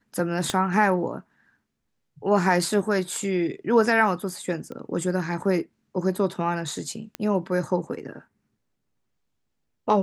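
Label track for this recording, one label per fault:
0.500000	0.500000	pop -11 dBFS
4.720000	4.720000	pop -25 dBFS
7.150000	7.150000	pop -15 dBFS

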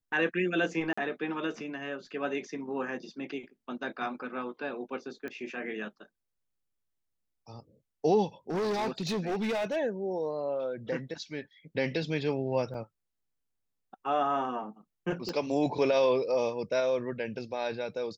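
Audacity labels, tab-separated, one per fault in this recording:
0.930000	0.970000	dropout 45 ms
5.280000	5.280000	pop -27 dBFS
8.500000	9.770000	clipped -27.5 dBFS
12.740000	12.740000	dropout 4.6 ms
15.290000	15.290000	pop -21 dBFS

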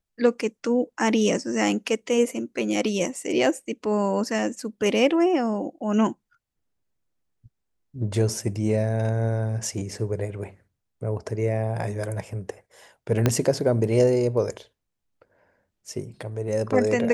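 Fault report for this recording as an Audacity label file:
13.260000	13.260000	pop -6 dBFS

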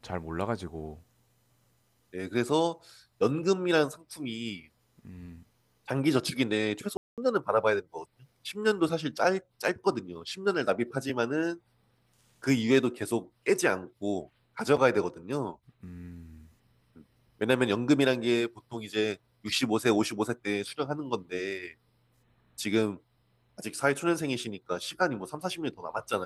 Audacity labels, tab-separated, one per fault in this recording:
6.970000	7.180000	dropout 207 ms

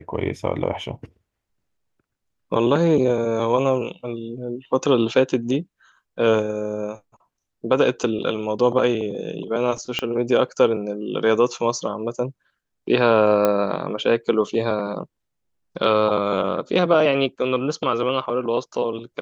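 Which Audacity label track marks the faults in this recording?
9.990000	9.990000	pop -9 dBFS
13.450000	13.450000	pop -6 dBFS

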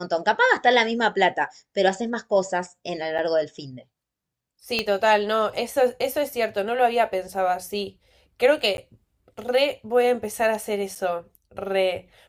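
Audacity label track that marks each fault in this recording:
3.180000	3.190000	dropout 7.8 ms
4.790000	4.790000	pop -10 dBFS
8.770000	8.780000	dropout 11 ms
10.950000	10.960000	dropout 6.7 ms

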